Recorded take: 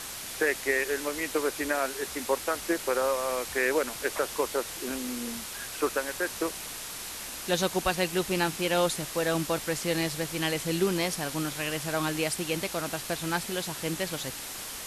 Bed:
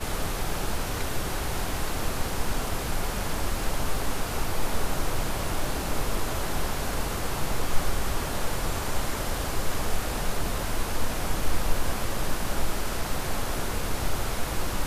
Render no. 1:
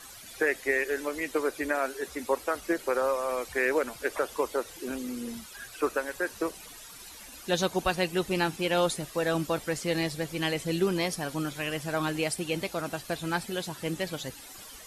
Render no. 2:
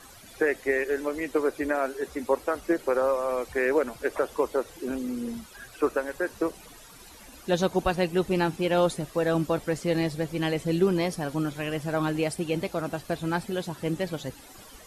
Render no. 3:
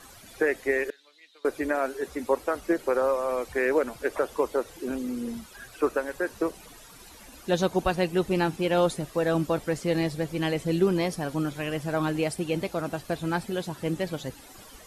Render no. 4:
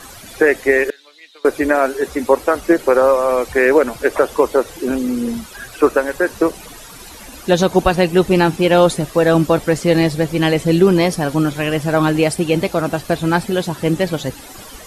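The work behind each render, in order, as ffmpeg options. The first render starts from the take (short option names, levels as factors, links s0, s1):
-af "afftdn=nr=13:nf=-39"
-af "tiltshelf=f=1300:g=4.5"
-filter_complex "[0:a]asettb=1/sr,asplit=3[s0][s1][s2];[s0]atrim=end=0.904[s3];[s1]atrim=start=0.9:end=1.45,asetpts=PTS-STARTPTS,afade=t=in:d=0.004:c=qsin,afade=t=out:st=0.546:d=0.004:c=qsin,bandpass=f=3800:t=q:w=6.6[s4];[s2]atrim=start=1.446[s5];[s3][s4]acrossfade=d=0.004:c1=hsin:c2=qsin[s6];[s6][s5]acrossfade=d=0.004:c1=qsin:c2=hsin"
-af "volume=3.98,alimiter=limit=0.891:level=0:latency=1"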